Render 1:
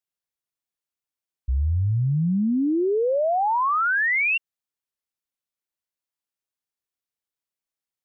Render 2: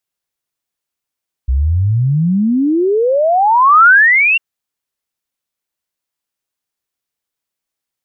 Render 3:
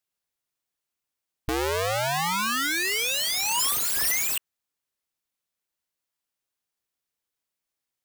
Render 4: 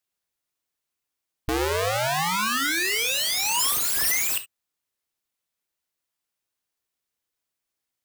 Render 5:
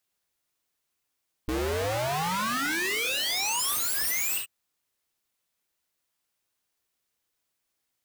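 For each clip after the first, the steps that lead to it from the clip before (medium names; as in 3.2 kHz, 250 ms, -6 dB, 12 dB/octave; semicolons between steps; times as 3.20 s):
dynamic bell 1.4 kHz, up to +7 dB, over -36 dBFS, Q 1.4; trim +8.5 dB
integer overflow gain 16 dB; trim -4 dB
gated-style reverb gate 90 ms flat, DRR 9.5 dB; trim +1 dB
hard clipper -31 dBFS, distortion -7 dB; trim +4 dB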